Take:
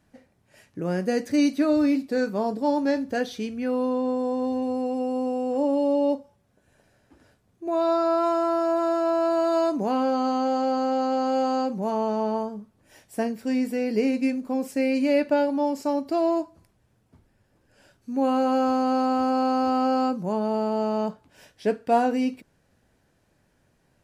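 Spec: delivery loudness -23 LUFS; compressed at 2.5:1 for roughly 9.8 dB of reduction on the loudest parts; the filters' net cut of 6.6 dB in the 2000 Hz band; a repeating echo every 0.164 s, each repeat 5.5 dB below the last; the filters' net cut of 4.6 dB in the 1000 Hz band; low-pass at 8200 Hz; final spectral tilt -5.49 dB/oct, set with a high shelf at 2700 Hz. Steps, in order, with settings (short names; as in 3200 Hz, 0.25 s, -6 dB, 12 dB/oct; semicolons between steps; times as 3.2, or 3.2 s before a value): LPF 8200 Hz; bell 1000 Hz -5.5 dB; bell 2000 Hz -8.5 dB; high shelf 2700 Hz +3.5 dB; compressor 2.5:1, threshold -34 dBFS; feedback echo 0.164 s, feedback 53%, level -5.5 dB; gain +10 dB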